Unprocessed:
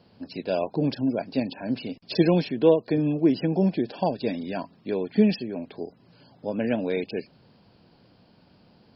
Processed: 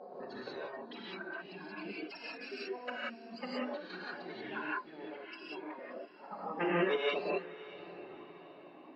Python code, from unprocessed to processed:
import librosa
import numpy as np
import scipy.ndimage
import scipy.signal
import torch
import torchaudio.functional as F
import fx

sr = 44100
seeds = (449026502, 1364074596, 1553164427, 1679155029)

y = fx.spec_ripple(x, sr, per_octave=0.79, drift_hz=-0.29, depth_db=21)
y = fx.dereverb_blind(y, sr, rt60_s=1.7)
y = fx.peak_eq(y, sr, hz=2800.0, db=-15.0, octaves=1.2)
y = fx.notch(y, sr, hz=2300.0, q=7.4)
y = fx.over_compress(y, sr, threshold_db=-29.0, ratio=-1.0)
y = fx.auto_wah(y, sr, base_hz=540.0, top_hz=1900.0, q=6.5, full_db=-33.0, direction='up')
y = fx.pitch_keep_formants(y, sr, semitones=7.5)
y = fx.air_absorb(y, sr, metres=170.0)
y = fx.echo_diffused(y, sr, ms=630, feedback_pct=45, wet_db=-16.0)
y = fx.rev_gated(y, sr, seeds[0], gate_ms=210, shape='rising', drr_db=-6.5)
y = F.gain(torch.from_numpy(y), 8.0).numpy()